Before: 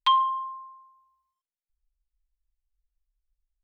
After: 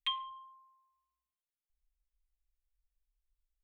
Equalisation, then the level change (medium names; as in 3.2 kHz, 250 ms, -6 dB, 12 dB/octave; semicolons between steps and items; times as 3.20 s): Chebyshev band-stop 250–700 Hz, order 2; elliptic band-stop 510–1200 Hz, stop band 40 dB; static phaser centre 1.4 kHz, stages 6; -3.0 dB